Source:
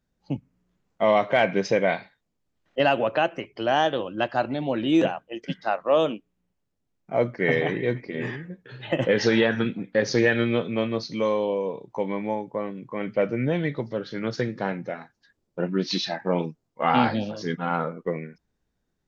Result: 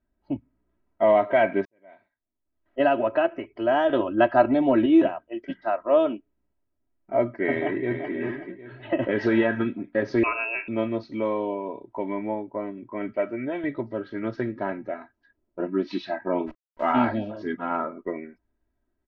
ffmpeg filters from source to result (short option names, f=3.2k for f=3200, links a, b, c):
-filter_complex "[0:a]asettb=1/sr,asplit=3[a][b][c];[a]atrim=end=3.894[d];[b]atrim=start=3.89:end=4.86,asetpts=PTS-STARTPTS,afade=t=in:d=0.004:c=qsin,afade=t=out:st=0.966:d=0.004:c=qsin,acontrast=55[e];[c]atrim=start=4.856[f];[d][e]acrossfade=d=0.004:c1=hsin:c2=qsin[g];[g][f]acrossfade=d=0.004:c1=qsin:c2=hsin,asplit=2[h][i];[i]afade=t=in:st=7.52:d=0.01,afade=t=out:st=8.13:d=0.01,aecho=0:1:380|760|1140|1520:0.473151|0.141945|0.0425836|0.0127751[j];[h][j]amix=inputs=2:normalize=0,asettb=1/sr,asplit=3[k][l][m];[k]atrim=end=10.234[n];[l]atrim=start=10.23:end=10.68,asetpts=PTS-STARTPTS,afade=t=in:d=0.004:c=qsin,afade=t=out:st=0.446:d=0.004:c=qsin,lowpass=f=2.5k:t=q:w=0.5098,lowpass=f=2.5k:t=q:w=0.6013,lowpass=f=2.5k:t=q:w=0.9,lowpass=f=2.5k:t=q:w=2.563,afreqshift=-2900[o];[m]atrim=start=10.676[p];[n][o]acrossfade=d=0.004:c1=hsin:c2=qsin[q];[q][p]acrossfade=d=0.004:c1=qsin:c2=hsin,asettb=1/sr,asplit=3[r][s][t];[r]atrim=end=13.124[u];[s]atrim=start=13.12:end=13.64,asetpts=PTS-STARTPTS,afade=t=in:d=0.004:c=qsin,afade=t=out:st=0.516:d=0.004:c=qsin,lowshelf=f=260:g=-11[v];[t]atrim=start=13.636[w];[u][v]acrossfade=d=0.004:c1=hsin:c2=qsin[x];[x][w]acrossfade=d=0.004:c1=qsin:c2=hsin,asplit=3[y][z][aa];[y]afade=t=out:st=16.46:d=0.02[ab];[z]acrusher=bits=7:dc=4:mix=0:aa=0.000001,afade=t=in:st=16.46:d=0.02,afade=t=out:st=16.92:d=0.02[ac];[aa]afade=t=in:st=16.92:d=0.02[ad];[ab][ac][ad]amix=inputs=3:normalize=0,asplit=2[ae][af];[ae]atrim=end=1.65,asetpts=PTS-STARTPTS,afade=t=out:st=1.646:d=0.004:c=hsin[ag];[af]atrim=start=1.65,asetpts=PTS-STARTPTS,afade=t=in:d=1.17:c=qua[ah];[ag][ah]concat=n=2:v=0:a=1,lowpass=1.8k,bandreject=f=1.1k:w=22,aecho=1:1:3.1:0.85,volume=-2dB"